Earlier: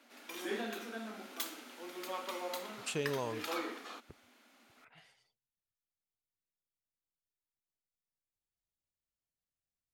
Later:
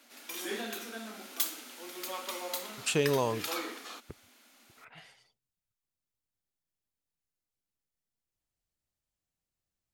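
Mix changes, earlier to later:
speech +8.5 dB
background: add high-shelf EQ 3,800 Hz +11.5 dB

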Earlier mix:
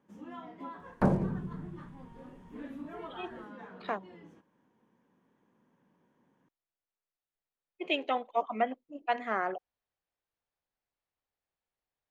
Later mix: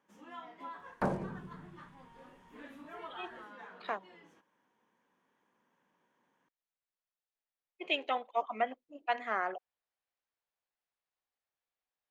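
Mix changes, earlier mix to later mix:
first sound: add tilt shelving filter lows −3 dB, about 650 Hz
master: add low-shelf EQ 370 Hz −12 dB

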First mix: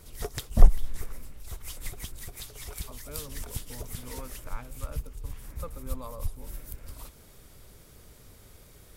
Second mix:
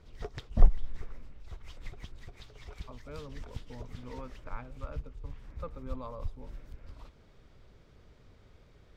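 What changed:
background −4.5 dB
master: add high-frequency loss of the air 190 metres

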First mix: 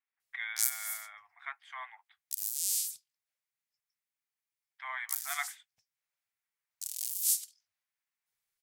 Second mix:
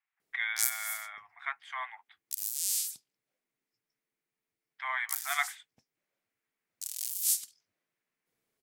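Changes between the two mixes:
speech +5.5 dB
background: remove guitar amp tone stack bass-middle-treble 10-0-10

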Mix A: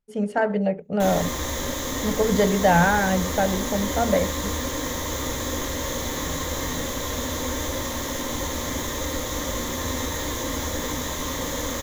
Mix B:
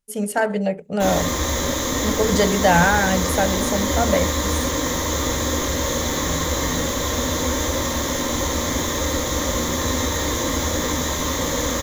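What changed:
speech: remove head-to-tape spacing loss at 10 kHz 23 dB
background: send +7.0 dB

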